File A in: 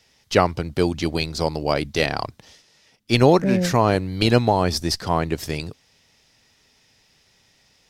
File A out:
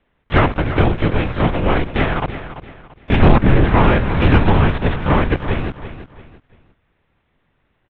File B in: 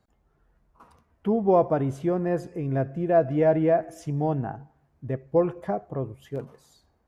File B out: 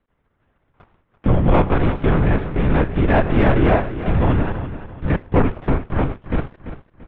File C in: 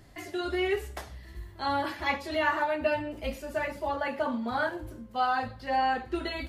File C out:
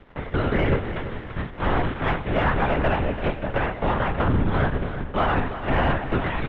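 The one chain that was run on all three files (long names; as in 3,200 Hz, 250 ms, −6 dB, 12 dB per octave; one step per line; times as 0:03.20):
spectral envelope flattened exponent 0.3
parametric band 780 Hz −7 dB 1.6 octaves
linear-prediction vocoder at 8 kHz whisper
in parallel at +1 dB: downward compressor, threshold −33 dBFS
on the sum: leveller curve on the samples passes 2
low-pass filter 1,300 Hz 12 dB per octave
repeating echo 339 ms, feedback 33%, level −12 dB
level +2.5 dB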